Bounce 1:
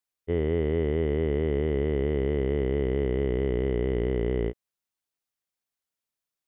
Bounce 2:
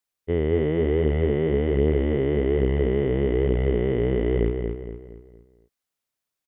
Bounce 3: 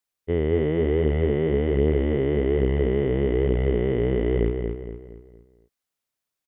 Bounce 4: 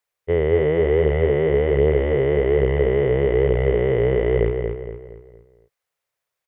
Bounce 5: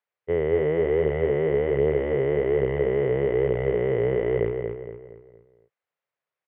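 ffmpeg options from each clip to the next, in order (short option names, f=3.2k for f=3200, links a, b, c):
-filter_complex "[0:a]asplit=2[a][b];[b]adelay=232,lowpass=f=3.1k:p=1,volume=-5dB,asplit=2[c][d];[d]adelay=232,lowpass=f=3.1k:p=1,volume=0.43,asplit=2[e][f];[f]adelay=232,lowpass=f=3.1k:p=1,volume=0.43,asplit=2[g][h];[h]adelay=232,lowpass=f=3.1k:p=1,volume=0.43,asplit=2[i][j];[j]adelay=232,lowpass=f=3.1k:p=1,volume=0.43[k];[a][c][e][g][i][k]amix=inputs=6:normalize=0,volume=3dB"
-af anull
-af "equalizer=f=125:t=o:w=1:g=6,equalizer=f=250:t=o:w=1:g=-11,equalizer=f=500:t=o:w=1:g=10,equalizer=f=1k:t=o:w=1:g=4,equalizer=f=2k:t=o:w=1:g=6"
-af "highpass=110,lowpass=2.8k,volume=-4dB"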